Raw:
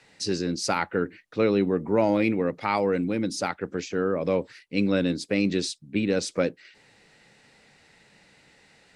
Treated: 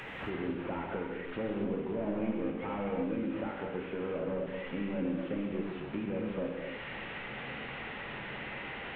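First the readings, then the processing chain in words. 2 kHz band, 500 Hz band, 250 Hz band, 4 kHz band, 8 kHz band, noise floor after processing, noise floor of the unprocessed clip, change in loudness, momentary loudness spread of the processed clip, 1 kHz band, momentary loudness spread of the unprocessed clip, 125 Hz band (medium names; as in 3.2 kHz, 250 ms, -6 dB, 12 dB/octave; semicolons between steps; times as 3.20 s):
-6.5 dB, -10.0 dB, -8.5 dB, -12.5 dB, under -40 dB, -42 dBFS, -59 dBFS, -10.5 dB, 6 LU, -10.0 dB, 7 LU, -9.0 dB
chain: one-bit delta coder 16 kbps, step -37.5 dBFS; compression 2.5:1, threshold -40 dBFS, peak gain reduction 13 dB; gated-style reverb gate 310 ms flat, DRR -0.5 dB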